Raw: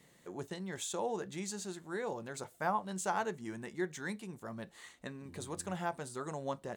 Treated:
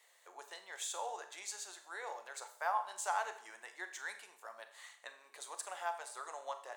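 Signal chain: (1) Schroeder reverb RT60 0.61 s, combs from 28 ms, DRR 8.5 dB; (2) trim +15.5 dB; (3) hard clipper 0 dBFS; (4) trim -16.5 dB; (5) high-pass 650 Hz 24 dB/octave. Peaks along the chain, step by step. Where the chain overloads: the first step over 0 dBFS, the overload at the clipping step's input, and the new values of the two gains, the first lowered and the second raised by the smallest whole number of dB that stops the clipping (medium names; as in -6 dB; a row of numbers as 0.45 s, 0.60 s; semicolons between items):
-20.0 dBFS, -4.5 dBFS, -4.5 dBFS, -21.0 dBFS, -23.0 dBFS; nothing clips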